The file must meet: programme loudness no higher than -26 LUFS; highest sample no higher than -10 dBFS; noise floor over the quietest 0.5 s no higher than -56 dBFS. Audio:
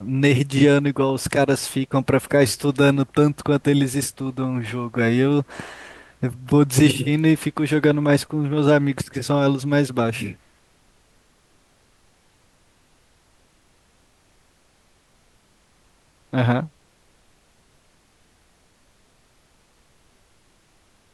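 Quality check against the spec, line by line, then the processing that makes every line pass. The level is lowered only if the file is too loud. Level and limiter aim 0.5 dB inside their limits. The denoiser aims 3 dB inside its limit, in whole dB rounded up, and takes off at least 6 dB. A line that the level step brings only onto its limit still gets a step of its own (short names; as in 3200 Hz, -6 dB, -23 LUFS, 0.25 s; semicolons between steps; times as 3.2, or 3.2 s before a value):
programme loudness -20.0 LUFS: fail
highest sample -5.0 dBFS: fail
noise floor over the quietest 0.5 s -59 dBFS: OK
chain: gain -6.5 dB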